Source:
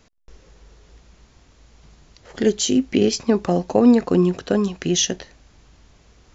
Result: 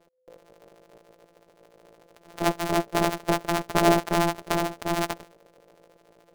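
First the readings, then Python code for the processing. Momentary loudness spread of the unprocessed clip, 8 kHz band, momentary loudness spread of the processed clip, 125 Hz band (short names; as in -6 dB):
7 LU, n/a, 7 LU, -5.5 dB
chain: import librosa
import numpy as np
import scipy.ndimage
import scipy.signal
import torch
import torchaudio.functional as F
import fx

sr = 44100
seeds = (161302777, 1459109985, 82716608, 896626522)

y = np.r_[np.sort(x[:len(x) // 256 * 256].reshape(-1, 256), axis=1).ravel(), x[len(x) // 256 * 256:]]
y = y * np.sin(2.0 * np.pi * 510.0 * np.arange(len(y)) / sr)
y = y * librosa.db_to_amplitude(-3.5)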